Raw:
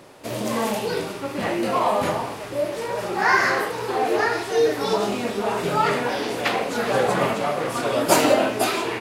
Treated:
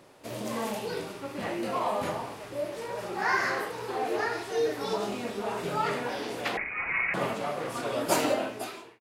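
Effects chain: fade out at the end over 0.77 s; 6.57–7.14 s: frequency inversion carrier 2.7 kHz; trim -8.5 dB

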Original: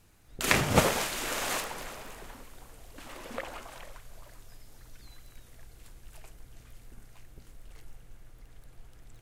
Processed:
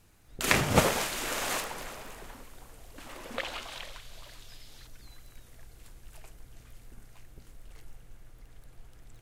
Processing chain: 3.38–4.87 s: peaking EQ 3.6 kHz +13 dB 1.4 oct

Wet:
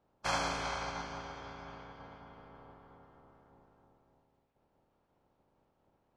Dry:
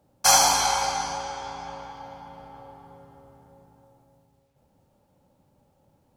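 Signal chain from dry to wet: spectral peaks clipped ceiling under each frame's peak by 17 dB; tape spacing loss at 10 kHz 28 dB; trim -7.5 dB

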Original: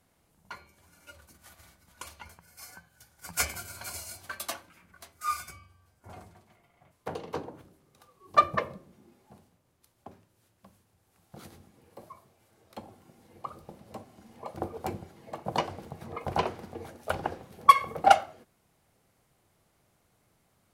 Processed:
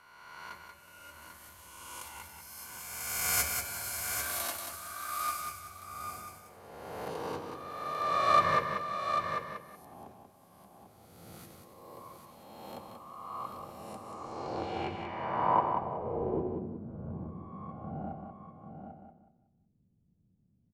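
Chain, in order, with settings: reverse spectral sustain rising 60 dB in 1.76 s; delay 794 ms -7 dB; low-pass sweep 13 kHz -> 200 Hz, 13.77–16.76 s; feedback delay 185 ms, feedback 29%, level -6 dB; trim -7 dB

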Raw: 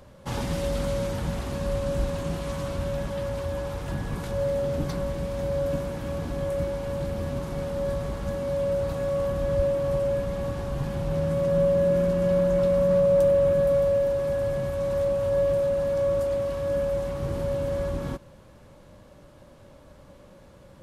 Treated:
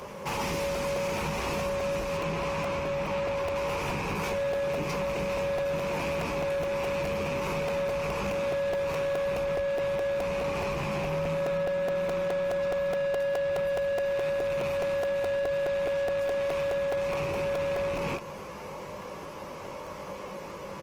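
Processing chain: rattle on loud lows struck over -38 dBFS, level -33 dBFS; compression 8:1, threshold -32 dBFS, peak gain reduction 14.5 dB; rippled EQ curve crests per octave 0.79, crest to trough 8 dB; early reflections 20 ms -7.5 dB, 30 ms -15 dB; overdrive pedal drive 23 dB, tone 2.1 kHz, clips at -22 dBFS; treble shelf 6.6 kHz +10 dB, from 2.17 s -3 dB, from 3.56 s +7.5 dB; crackling interface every 0.21 s, samples 128, repeat, from 0.33 s; Opus 20 kbps 48 kHz

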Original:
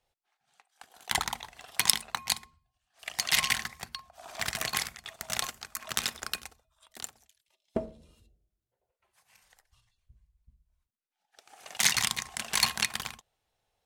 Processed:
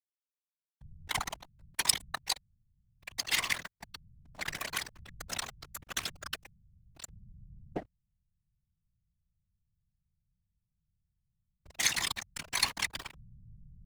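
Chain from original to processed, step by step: coarse spectral quantiser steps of 15 dB; hysteresis with a dead band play -29 dBFS; whisper effect; trim -3 dB

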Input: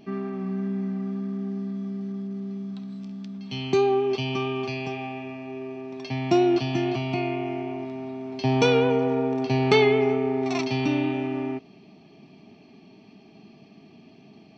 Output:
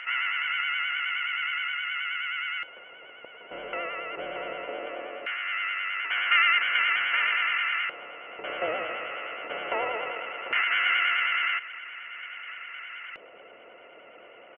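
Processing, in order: spectral levelling over time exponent 0.6; frequency inversion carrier 3.1 kHz; harmony voices -12 st -5 dB, -5 st -2 dB; LFO band-pass square 0.19 Hz 540–1700 Hz; vibrato 9.5 Hz 60 cents; trim -1.5 dB

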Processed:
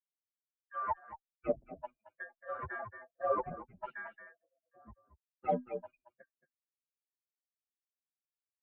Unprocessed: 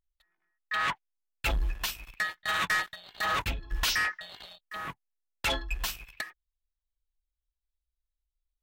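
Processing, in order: expander on every frequency bin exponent 3; 1.62–2.32 s: peaking EQ 690 Hz +8 dB 1.2 oct; delay 224 ms -13 dB; in parallel at +1 dB: peak limiter -33 dBFS, peak gain reduction 11.5 dB; on the sum: low-pass sweep 680 Hz -> 280 Hz, 5.80–7.14 s; mistuned SSB -85 Hz 180–2500 Hz; Chebyshev shaper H 6 -39 dB, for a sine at -18 dBFS; endless flanger 7.2 ms -2.4 Hz; trim +3.5 dB

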